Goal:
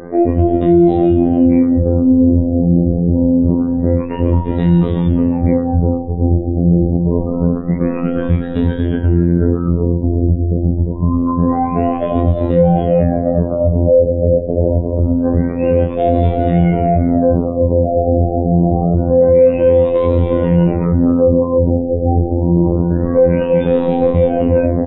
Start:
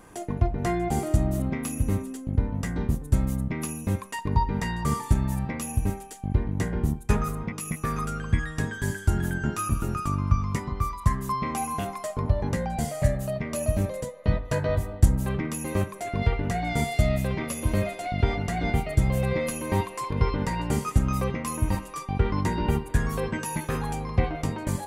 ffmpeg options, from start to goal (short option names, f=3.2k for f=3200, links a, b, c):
-filter_complex "[0:a]afftfilt=real='re':imag='-im':win_size=2048:overlap=0.75,highshelf=f=4.2k:g=-10.5,acompressor=threshold=-35dB:ratio=2,asplit=2[a][b];[b]adelay=347,lowpass=f=1.1k:p=1,volume=-6dB,asplit=2[c][d];[d]adelay=347,lowpass=f=1.1k:p=1,volume=0.28,asplit=2[e][f];[f]adelay=347,lowpass=f=1.1k:p=1,volume=0.28,asplit=2[g][h];[h]adelay=347,lowpass=f=1.1k:p=1,volume=0.28[i];[a][c][e][g][i]amix=inputs=5:normalize=0,afftfilt=real='hypot(re,im)*cos(PI*b)':imag='0':win_size=2048:overlap=0.75,equalizer=f=250:t=o:w=1:g=7,equalizer=f=500:t=o:w=1:g=11,equalizer=f=1k:t=o:w=1:g=-9,equalizer=f=2k:t=o:w=1:g=-6,equalizer=f=4k:t=o:w=1:g=5,equalizer=f=8k:t=o:w=1:g=8,alimiter=level_in=24.5dB:limit=-1dB:release=50:level=0:latency=1,afftfilt=real='re*lt(b*sr/1024,840*pow(4000/840,0.5+0.5*sin(2*PI*0.26*pts/sr)))':imag='im*lt(b*sr/1024,840*pow(4000/840,0.5+0.5*sin(2*PI*0.26*pts/sr)))':win_size=1024:overlap=0.75,volume=-1dB"